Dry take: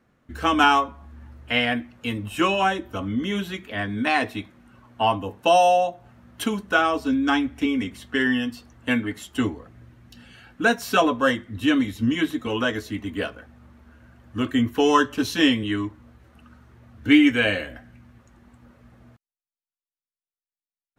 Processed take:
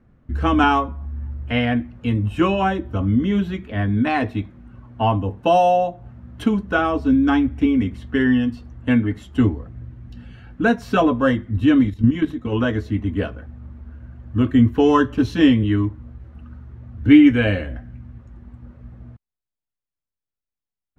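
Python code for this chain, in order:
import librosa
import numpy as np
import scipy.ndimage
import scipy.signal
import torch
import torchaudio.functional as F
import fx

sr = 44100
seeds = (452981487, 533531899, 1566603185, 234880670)

y = fx.level_steps(x, sr, step_db=10, at=(11.87, 12.51), fade=0.02)
y = fx.riaa(y, sr, side='playback')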